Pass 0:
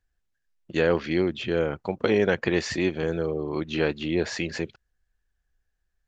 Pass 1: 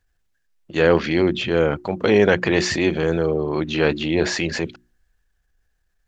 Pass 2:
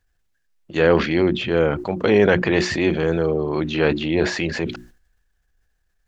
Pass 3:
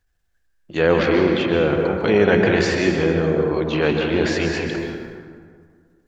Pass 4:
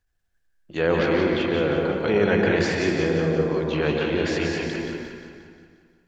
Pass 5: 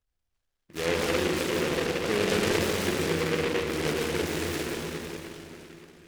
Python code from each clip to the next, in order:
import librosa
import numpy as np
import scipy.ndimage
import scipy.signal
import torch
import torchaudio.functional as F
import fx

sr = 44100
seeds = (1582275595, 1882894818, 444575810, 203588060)

y1 = fx.hum_notches(x, sr, base_hz=60, count=6)
y1 = fx.transient(y1, sr, attack_db=-5, sustain_db=2)
y1 = y1 * 10.0 ** (7.5 / 20.0)
y2 = fx.dynamic_eq(y1, sr, hz=6600.0, q=0.94, threshold_db=-41.0, ratio=4.0, max_db=-6)
y2 = fx.sustainer(y2, sr, db_per_s=110.0)
y3 = fx.rev_plate(y2, sr, seeds[0], rt60_s=2.0, hf_ratio=0.5, predelay_ms=115, drr_db=1.5)
y3 = y3 * 10.0 ** (-1.0 / 20.0)
y4 = fx.echo_split(y3, sr, split_hz=840.0, low_ms=116, high_ms=177, feedback_pct=52, wet_db=-6)
y4 = y4 * 10.0 ** (-5.0 / 20.0)
y5 = fx.rev_plate(y4, sr, seeds[1], rt60_s=3.6, hf_ratio=0.8, predelay_ms=0, drr_db=2.0)
y5 = fx.noise_mod_delay(y5, sr, seeds[2], noise_hz=1800.0, depth_ms=0.17)
y5 = y5 * 10.0 ** (-7.5 / 20.0)